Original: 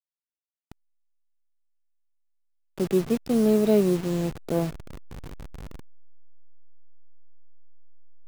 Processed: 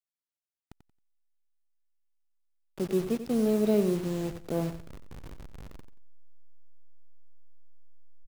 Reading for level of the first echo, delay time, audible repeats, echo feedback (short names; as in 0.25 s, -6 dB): -11.0 dB, 90 ms, 2, 23%